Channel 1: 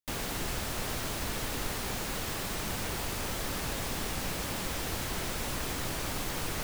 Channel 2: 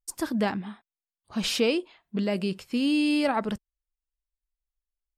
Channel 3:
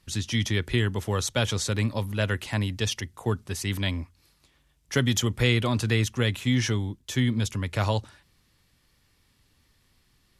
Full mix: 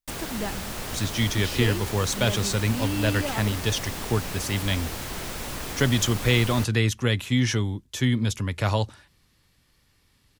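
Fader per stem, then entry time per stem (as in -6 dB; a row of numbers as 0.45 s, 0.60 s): +1.0 dB, -6.5 dB, +1.5 dB; 0.00 s, 0.00 s, 0.85 s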